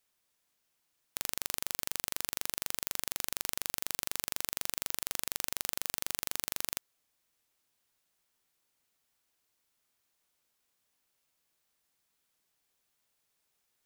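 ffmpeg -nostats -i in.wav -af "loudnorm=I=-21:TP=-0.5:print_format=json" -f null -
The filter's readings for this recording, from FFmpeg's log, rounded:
"input_i" : "-34.8",
"input_tp" : "-4.8",
"input_lra" : "2.2",
"input_thresh" : "-44.8",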